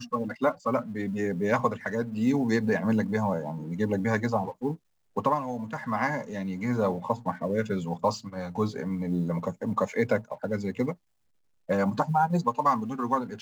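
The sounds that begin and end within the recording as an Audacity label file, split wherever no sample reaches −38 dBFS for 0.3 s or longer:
5.160000	10.930000	sound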